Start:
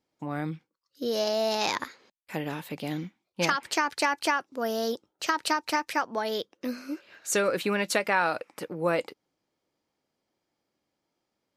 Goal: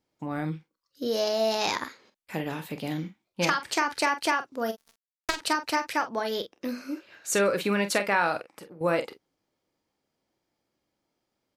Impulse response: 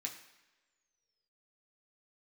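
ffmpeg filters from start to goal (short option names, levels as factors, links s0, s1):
-filter_complex "[0:a]lowshelf=f=92:g=6,asplit=3[s0][s1][s2];[s0]afade=t=out:st=4.7:d=0.02[s3];[s1]acrusher=bits=2:mix=0:aa=0.5,afade=t=in:st=4.7:d=0.02,afade=t=out:st=5.36:d=0.02[s4];[s2]afade=t=in:st=5.36:d=0.02[s5];[s3][s4][s5]amix=inputs=3:normalize=0,asettb=1/sr,asplit=3[s6][s7][s8];[s6]atrim=end=8.414[s9];[s7]atrim=start=8.41:end=8.81,asetpts=PTS-STARTPTS,afade=t=in:d=0.004:c=qsin,afade=t=out:st=0.396:d=0.004:c=qsin,acompressor=threshold=0.00708:ratio=12[s10];[s8]atrim=start=8.806[s11];[s9][s10]acrossfade=d=0.004:c1=hsin:c2=qsin[s12];[s12][s11]acrossfade=d=0.004:c1=qsin:c2=hsin,aecho=1:1:30|45:0.188|0.282"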